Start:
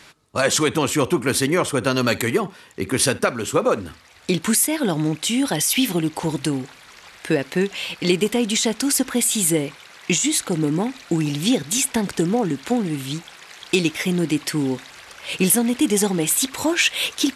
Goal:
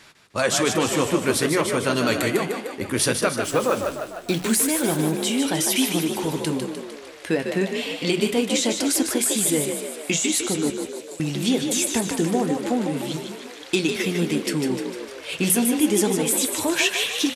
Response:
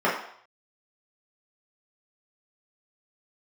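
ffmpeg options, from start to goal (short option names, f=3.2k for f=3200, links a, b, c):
-filter_complex "[0:a]flanger=delay=8.3:depth=4.5:regen=-69:speed=0.3:shape=sinusoidal,asettb=1/sr,asplit=3[a][b][c];[a]atrim=end=10.704[d];[b]atrim=start=10.7:end=11.2,asetpts=PTS-STARTPTS,afade=t=in:d=0.004:c=qsin,afade=t=out:st=0.496:d=0.004:c=qsin,aderivative[e];[c]atrim=start=11.196[f];[d][e]acrossfade=d=0.004:c1=hsin:c2=qsin[g];[g][f]acrossfade=d=0.004:c1=qsin:c2=hsin,bandreject=f=45.16:t=h:w=4,bandreject=f=90.32:t=h:w=4,bandreject=f=135.48:t=h:w=4,bandreject=f=180.64:t=h:w=4,asettb=1/sr,asplit=3[h][i][j];[h]atrim=end=3.444[k];[i]atrim=start=3.44:end=4.96,asetpts=PTS-STARTPTS,afade=t=in:d=0.004:c=qsin,afade=t=out:st=1.516:d=0.004:c=qsin,acrusher=bits=7:dc=4:mix=0:aa=0.000001[l];[j]atrim=start=4.956[m];[k][l]acrossfade=d=0.004:c1=hsin:c2=qsin[n];[n][m]acrossfade=d=0.004:c1=qsin:c2=hsin,asplit=8[o][p][q][r][s][t][u][v];[p]adelay=151,afreqshift=47,volume=-6dB[w];[q]adelay=302,afreqshift=94,volume=-10.9dB[x];[r]adelay=453,afreqshift=141,volume=-15.8dB[y];[s]adelay=604,afreqshift=188,volume=-20.6dB[z];[t]adelay=755,afreqshift=235,volume=-25.5dB[aa];[u]adelay=906,afreqshift=282,volume=-30.4dB[ab];[v]adelay=1057,afreqshift=329,volume=-35.3dB[ac];[o][w][x][y][z][aa][ab][ac]amix=inputs=8:normalize=0,volume=1.5dB"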